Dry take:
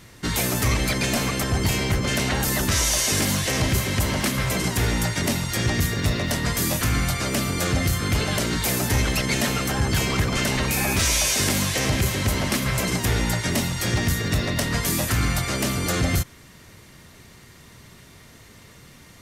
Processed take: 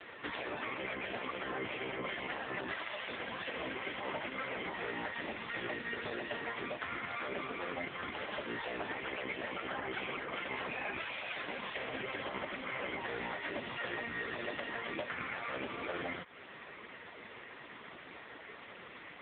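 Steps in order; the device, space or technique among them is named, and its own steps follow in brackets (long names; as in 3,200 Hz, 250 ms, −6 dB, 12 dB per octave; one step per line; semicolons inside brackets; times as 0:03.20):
voicemail (band-pass filter 400–3,100 Hz; downward compressor 12 to 1, threshold −40 dBFS, peak gain reduction 17.5 dB; level +8.5 dB; AMR narrowband 4.75 kbit/s 8,000 Hz)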